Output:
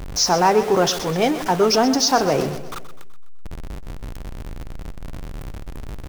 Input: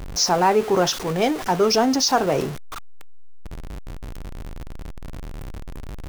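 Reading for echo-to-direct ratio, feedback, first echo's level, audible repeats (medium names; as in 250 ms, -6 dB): -11.5 dB, 50%, -13.0 dB, 4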